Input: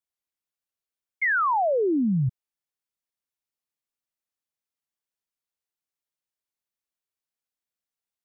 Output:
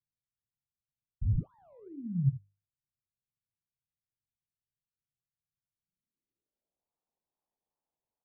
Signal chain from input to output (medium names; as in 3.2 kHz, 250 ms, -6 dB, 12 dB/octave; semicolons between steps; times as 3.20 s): wow and flutter 48 cents; hum notches 50/100/150/200/250/300/350/400/450 Hz; early reflections 29 ms -11 dB, 77 ms -14 dB; decimation with a swept rate 23×, swing 60% 2.4 Hz; low-pass sweep 130 Hz -> 880 Hz, 5.77–6.87 s; trim -8.5 dB